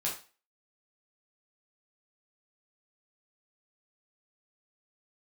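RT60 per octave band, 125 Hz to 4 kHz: 0.30 s, 0.30 s, 0.35 s, 0.35 s, 0.35 s, 0.35 s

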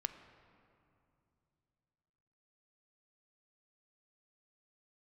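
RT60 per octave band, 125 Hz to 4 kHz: 3.7 s, 3.3 s, 2.8 s, 2.6 s, 2.1 s, 1.8 s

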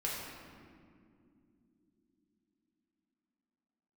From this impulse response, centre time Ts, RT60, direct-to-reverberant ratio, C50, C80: 103 ms, no single decay rate, -5.0 dB, -0.5 dB, 1.5 dB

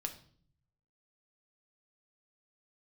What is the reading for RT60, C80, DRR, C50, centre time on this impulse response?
0.50 s, 16.0 dB, 4.5 dB, 12.0 dB, 9 ms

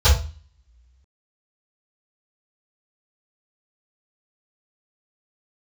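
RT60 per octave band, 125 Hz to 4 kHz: 0.55 s, 0.55 s, 0.35 s, 0.35 s, 0.35 s, 0.40 s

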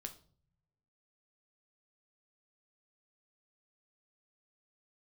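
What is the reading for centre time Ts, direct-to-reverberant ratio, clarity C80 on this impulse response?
8 ms, 5.5 dB, 18.5 dB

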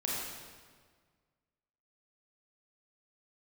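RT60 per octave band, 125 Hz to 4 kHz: 2.0 s, 1.8 s, 1.7 s, 1.6 s, 1.5 s, 1.3 s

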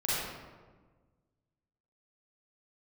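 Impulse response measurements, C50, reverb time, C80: -4.0 dB, 1.4 s, -0.5 dB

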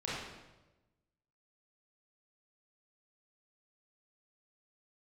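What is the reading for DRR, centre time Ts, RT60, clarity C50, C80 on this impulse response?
-8.0 dB, 86 ms, 1.1 s, -2.0 dB, 1.5 dB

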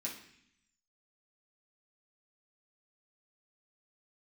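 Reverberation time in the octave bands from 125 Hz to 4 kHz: 1.0 s, 0.95 s, 0.65 s, 0.65 s, 0.90 s, 0.85 s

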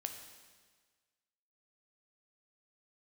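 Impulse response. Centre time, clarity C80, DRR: 29 ms, 8.0 dB, 5.0 dB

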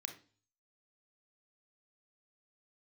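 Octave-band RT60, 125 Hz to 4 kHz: 0.70 s, 0.50 s, 0.40 s, 0.40 s, 0.35 s, 0.45 s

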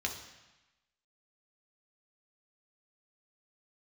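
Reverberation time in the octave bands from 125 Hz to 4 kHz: 1.0 s, 1.0 s, 0.95 s, 1.1 s, 1.2 s, 1.1 s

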